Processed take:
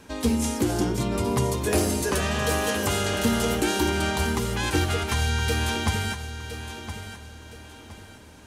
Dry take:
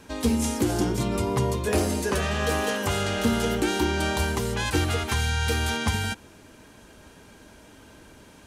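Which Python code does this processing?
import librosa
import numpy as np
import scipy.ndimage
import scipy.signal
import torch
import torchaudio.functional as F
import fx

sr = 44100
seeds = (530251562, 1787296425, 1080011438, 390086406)

y = fx.high_shelf(x, sr, hz=5700.0, db=6.0, at=(1.26, 3.9))
y = fx.echo_feedback(y, sr, ms=1016, feedback_pct=34, wet_db=-11)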